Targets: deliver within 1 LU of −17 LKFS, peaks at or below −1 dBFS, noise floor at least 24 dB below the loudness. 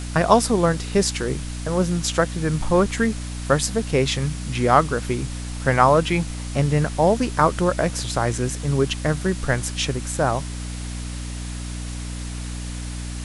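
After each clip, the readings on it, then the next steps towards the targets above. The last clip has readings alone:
mains hum 60 Hz; hum harmonics up to 300 Hz; level of the hum −28 dBFS; background noise floor −31 dBFS; target noise floor −46 dBFS; integrated loudness −22.0 LKFS; sample peak −1.0 dBFS; target loudness −17.0 LKFS
→ mains-hum notches 60/120/180/240/300 Hz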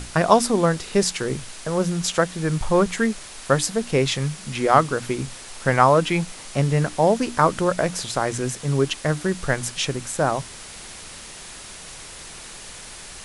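mains hum none found; background noise floor −40 dBFS; target noise floor −46 dBFS
→ broadband denoise 6 dB, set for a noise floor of −40 dBFS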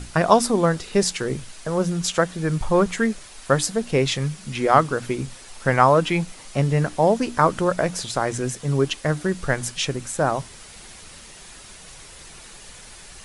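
background noise floor −43 dBFS; target noise floor −46 dBFS
→ broadband denoise 6 dB, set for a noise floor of −43 dBFS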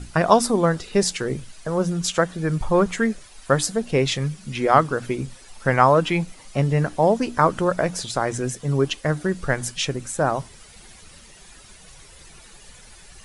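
background noise floor −47 dBFS; integrated loudness −22.0 LKFS; sample peak −1.0 dBFS; target loudness −17.0 LKFS
→ level +5 dB
brickwall limiter −1 dBFS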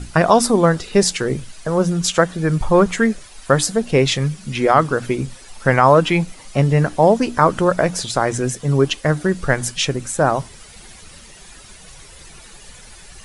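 integrated loudness −17.5 LKFS; sample peak −1.0 dBFS; background noise floor −42 dBFS

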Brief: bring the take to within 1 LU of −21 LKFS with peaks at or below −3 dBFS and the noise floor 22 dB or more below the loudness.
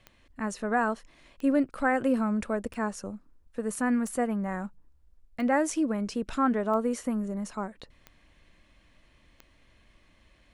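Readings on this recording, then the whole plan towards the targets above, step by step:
number of clicks 8; integrated loudness −29.0 LKFS; sample peak −13.0 dBFS; target loudness −21.0 LKFS
→ click removal
level +8 dB

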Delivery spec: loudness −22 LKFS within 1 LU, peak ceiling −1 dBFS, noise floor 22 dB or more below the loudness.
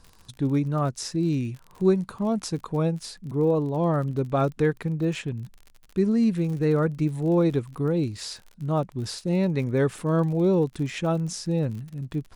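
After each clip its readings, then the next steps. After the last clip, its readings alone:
crackle rate 42 per second; integrated loudness −25.5 LKFS; sample peak −9.5 dBFS; target loudness −22.0 LKFS
→ click removal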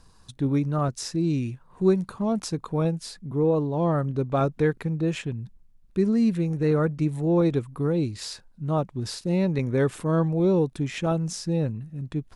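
crackle rate 0.081 per second; integrated loudness −25.5 LKFS; sample peak −9.5 dBFS; target loudness −22.0 LKFS
→ level +3.5 dB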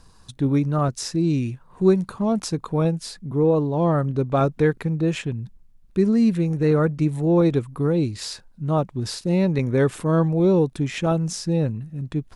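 integrated loudness −22.0 LKFS; sample peak −6.0 dBFS; background noise floor −52 dBFS

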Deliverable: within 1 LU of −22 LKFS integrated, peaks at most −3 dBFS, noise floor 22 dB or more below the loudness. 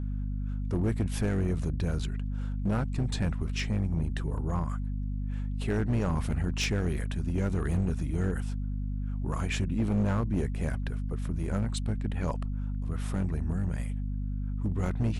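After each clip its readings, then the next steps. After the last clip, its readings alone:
share of clipped samples 2.5%; peaks flattened at −22.0 dBFS; mains hum 50 Hz; hum harmonics up to 250 Hz; level of the hum −30 dBFS; integrated loudness −31.5 LKFS; sample peak −22.0 dBFS; target loudness −22.0 LKFS
→ clipped peaks rebuilt −22 dBFS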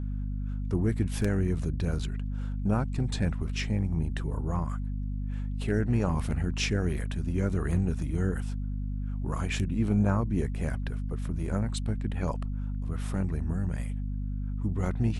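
share of clipped samples 0.0%; mains hum 50 Hz; hum harmonics up to 250 Hz; level of the hum −29 dBFS
→ hum removal 50 Hz, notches 5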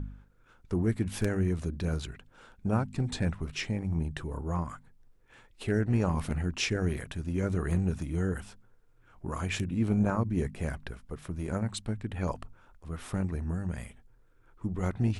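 mains hum none found; integrated loudness −32.0 LKFS; sample peak −14.0 dBFS; target loudness −22.0 LKFS
→ level +10 dB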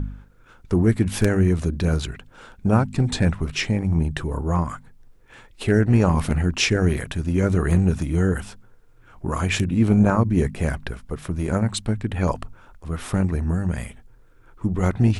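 integrated loudness −22.0 LKFS; sample peak −4.0 dBFS; background noise floor −51 dBFS

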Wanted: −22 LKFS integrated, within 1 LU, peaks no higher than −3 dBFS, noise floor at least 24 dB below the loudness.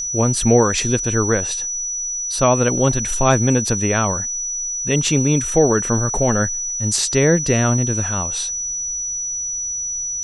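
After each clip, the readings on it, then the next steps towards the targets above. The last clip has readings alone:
interfering tone 5,900 Hz; level of the tone −22 dBFS; integrated loudness −18.0 LKFS; sample peak −1.5 dBFS; target loudness −22.0 LKFS
→ notch filter 5,900 Hz, Q 30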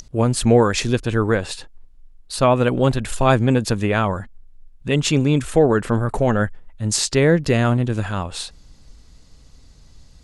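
interfering tone none found; integrated loudness −19.0 LKFS; sample peak −2.5 dBFS; target loudness −22.0 LKFS
→ level −3 dB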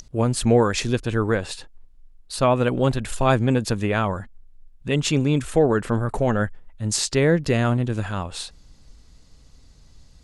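integrated loudness −22.0 LKFS; sample peak −5.5 dBFS; background noise floor −52 dBFS

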